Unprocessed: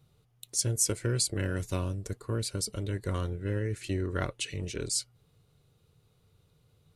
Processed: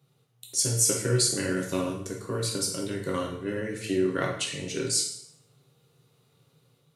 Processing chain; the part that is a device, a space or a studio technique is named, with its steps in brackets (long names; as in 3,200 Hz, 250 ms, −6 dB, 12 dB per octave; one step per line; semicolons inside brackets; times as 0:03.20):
far laptop microphone (convolution reverb RT60 0.65 s, pre-delay 7 ms, DRR −1 dB; high-pass filter 140 Hz 24 dB per octave; automatic gain control gain up to 4 dB)
level −2 dB